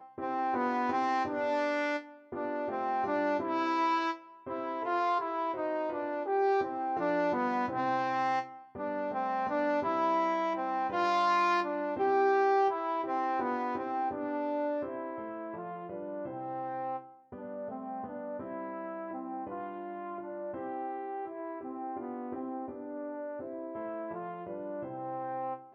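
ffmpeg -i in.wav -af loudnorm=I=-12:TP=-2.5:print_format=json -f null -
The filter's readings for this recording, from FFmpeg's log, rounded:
"input_i" : "-33.4",
"input_tp" : "-18.5",
"input_lra" : "10.4",
"input_thresh" : "-43.4",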